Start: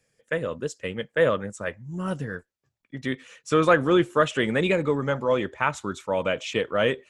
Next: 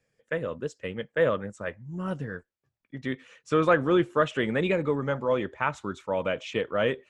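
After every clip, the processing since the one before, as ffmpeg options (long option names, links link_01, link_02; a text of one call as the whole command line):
ffmpeg -i in.wav -af "aemphasis=mode=reproduction:type=50kf,volume=-2.5dB" out.wav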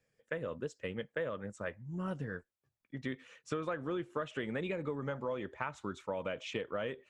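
ffmpeg -i in.wav -af "acompressor=threshold=-29dB:ratio=10,volume=-4dB" out.wav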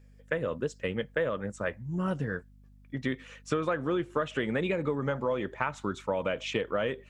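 ffmpeg -i in.wav -af "aeval=exprs='val(0)+0.000794*(sin(2*PI*50*n/s)+sin(2*PI*2*50*n/s)/2+sin(2*PI*3*50*n/s)/3+sin(2*PI*4*50*n/s)/4+sin(2*PI*5*50*n/s)/5)':channel_layout=same,volume=7.5dB" out.wav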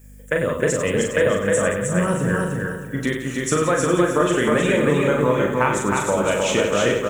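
ffmpeg -i in.wav -filter_complex "[0:a]asplit=2[link_01][link_02];[link_02]aecho=0:1:40|96|174.4|284.2|437.8:0.631|0.398|0.251|0.158|0.1[link_03];[link_01][link_03]amix=inputs=2:normalize=0,aexciter=amount=9.9:drive=2.5:freq=6800,asplit=2[link_04][link_05];[link_05]aecho=0:1:312|624|936|1248:0.708|0.212|0.0637|0.0191[link_06];[link_04][link_06]amix=inputs=2:normalize=0,volume=8dB" out.wav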